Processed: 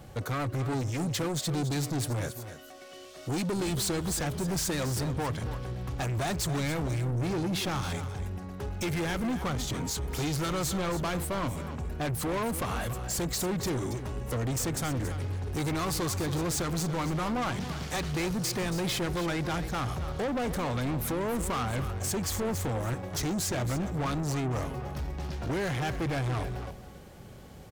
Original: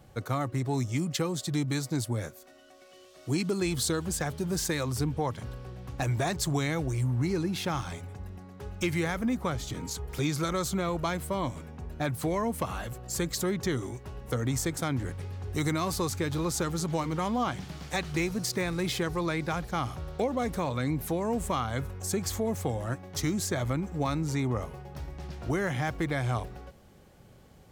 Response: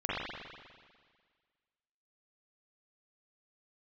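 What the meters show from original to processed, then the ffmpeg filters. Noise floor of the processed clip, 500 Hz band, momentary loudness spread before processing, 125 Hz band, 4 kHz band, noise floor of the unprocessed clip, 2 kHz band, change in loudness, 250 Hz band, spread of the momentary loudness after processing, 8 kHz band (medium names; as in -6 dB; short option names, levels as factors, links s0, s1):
-47 dBFS, -1.0 dB, 10 LU, +0.5 dB, +1.0 dB, -55 dBFS, -0.5 dB, -0.5 dB, -1.0 dB, 7 LU, +1.0 dB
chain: -filter_complex "[0:a]asoftclip=type=tanh:threshold=0.0178,asplit=2[s0][s1];[s1]aecho=0:1:277:0.266[s2];[s0][s2]amix=inputs=2:normalize=0,volume=2.24"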